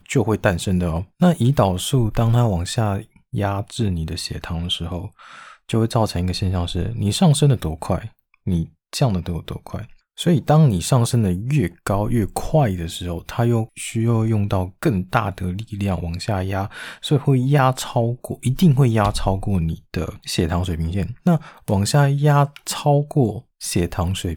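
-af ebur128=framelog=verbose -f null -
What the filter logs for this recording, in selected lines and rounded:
Integrated loudness:
  I:         -20.5 LUFS
  Threshold: -30.7 LUFS
Loudness range:
  LRA:         4.0 LU
  Threshold: -40.9 LUFS
  LRA low:   -23.3 LUFS
  LRA high:  -19.3 LUFS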